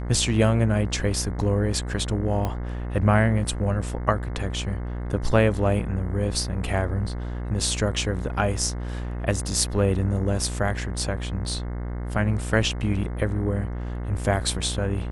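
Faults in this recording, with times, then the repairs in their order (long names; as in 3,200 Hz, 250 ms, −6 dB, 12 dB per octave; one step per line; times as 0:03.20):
mains buzz 60 Hz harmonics 36 −30 dBFS
0:02.45: click −14 dBFS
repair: click removal
hum removal 60 Hz, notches 36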